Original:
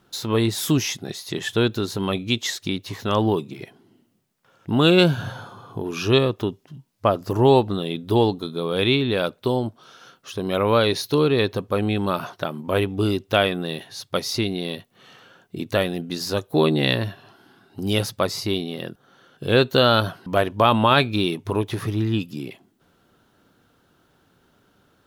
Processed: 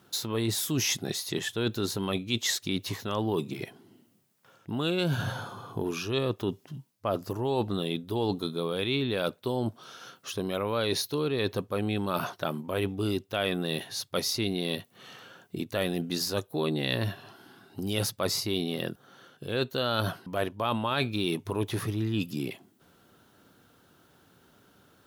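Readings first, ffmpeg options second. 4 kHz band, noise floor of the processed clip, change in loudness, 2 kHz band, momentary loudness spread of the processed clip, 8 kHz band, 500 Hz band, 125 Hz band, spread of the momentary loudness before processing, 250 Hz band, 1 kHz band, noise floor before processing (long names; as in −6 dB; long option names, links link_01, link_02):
−6.5 dB, −64 dBFS, −8.5 dB, −8.0 dB, 10 LU, −0.5 dB, −9.5 dB, −8.0 dB, 15 LU, −8.0 dB, −10.5 dB, −63 dBFS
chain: -af "areverse,acompressor=threshold=-26dB:ratio=6,areverse,highpass=58,highshelf=frequency=7300:gain=6.5"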